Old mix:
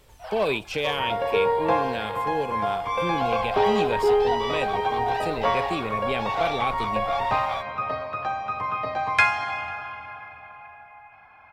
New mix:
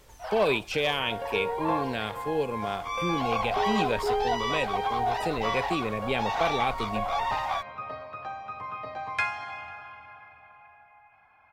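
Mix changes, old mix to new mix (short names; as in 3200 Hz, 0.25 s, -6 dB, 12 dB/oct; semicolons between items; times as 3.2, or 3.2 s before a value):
first sound: send -11.5 dB; second sound -9.0 dB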